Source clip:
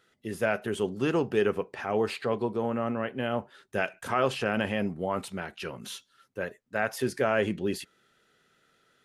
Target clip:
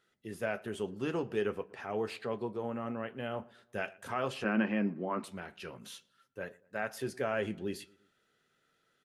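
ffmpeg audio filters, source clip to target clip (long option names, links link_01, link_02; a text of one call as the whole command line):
ffmpeg -i in.wav -filter_complex "[0:a]flanger=delay=4.9:depth=5.9:regen=-70:speed=0.44:shape=triangular,asettb=1/sr,asplit=3[link_01][link_02][link_03];[link_01]atrim=end=4.444[link_04];[link_02]atrim=start=4.44:end=5.24,asetpts=PTS-STARTPTS,afade=type=in:duration=0.004:curve=qsin,afade=type=out:start_time=0.796:duration=0.004:curve=qsin,highpass=frequency=140:width=0.5412,highpass=frequency=140:width=1.3066,equalizer=frequency=220:width_type=q:width=4:gain=9,equalizer=frequency=330:width_type=q:width=4:gain=10,equalizer=frequency=1100:width_type=q:width=4:gain=6,equalizer=frequency=1600:width_type=q:width=4:gain=5,equalizer=frequency=2400:width_type=q:width=4:gain=4,equalizer=frequency=3400:width_type=q:width=4:gain=-8,lowpass=frequency=4800:width=0.5412,lowpass=frequency=4800:width=1.3066[link_05];[link_03]atrim=start=5.236[link_06];[link_04][link_05]acrossfade=duration=0.004:curve1=hsin:curve2=qsin[link_07];[link_07][link_06]acrossfade=duration=0.004:curve1=qsin:curve2=hsin,asplit=2[link_08][link_09];[link_09]adelay=116,lowpass=frequency=2000:poles=1,volume=-22.5dB,asplit=2[link_10][link_11];[link_11]adelay=116,lowpass=frequency=2000:poles=1,volume=0.47,asplit=2[link_12][link_13];[link_13]adelay=116,lowpass=frequency=2000:poles=1,volume=0.47[link_14];[link_08][link_10][link_12][link_14]amix=inputs=4:normalize=0,volume=-3.5dB" out.wav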